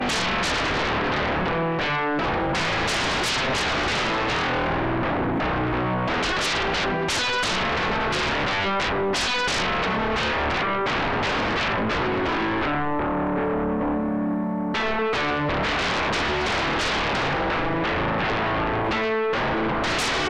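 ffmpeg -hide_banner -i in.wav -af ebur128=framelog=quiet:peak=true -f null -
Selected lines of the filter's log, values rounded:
Integrated loudness:
  I:         -23.1 LUFS
  Threshold: -33.1 LUFS
Loudness range:
  LRA:         1.4 LU
  Threshold: -43.1 LUFS
  LRA low:   -24.0 LUFS
  LRA high:  -22.6 LUFS
True peak:
  Peak:      -20.6 dBFS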